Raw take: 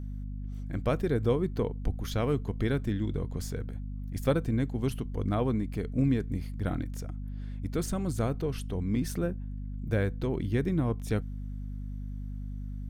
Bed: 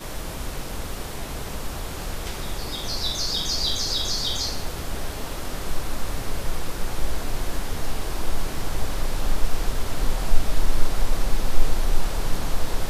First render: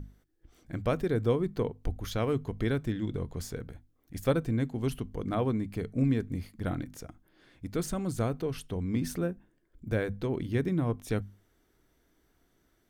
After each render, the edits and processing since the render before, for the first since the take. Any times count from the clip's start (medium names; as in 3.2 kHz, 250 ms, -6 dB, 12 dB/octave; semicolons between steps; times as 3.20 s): hum notches 50/100/150/200/250 Hz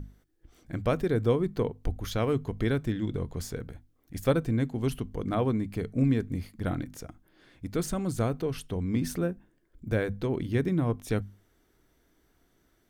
trim +2 dB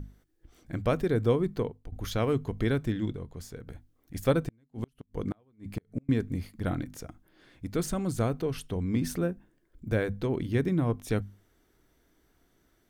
1.52–1.92 s: fade out linear, to -19 dB; 3.13–3.67 s: gain -7 dB; 4.42–6.09 s: inverted gate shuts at -20 dBFS, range -38 dB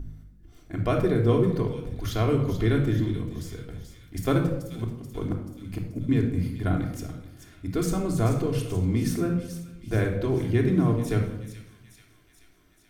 feedback echo behind a high-pass 433 ms, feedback 61%, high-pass 3 kHz, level -8.5 dB; simulated room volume 2500 m³, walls furnished, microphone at 3.2 m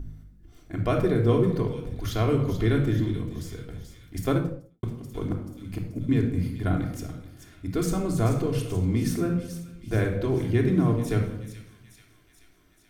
4.20–4.83 s: studio fade out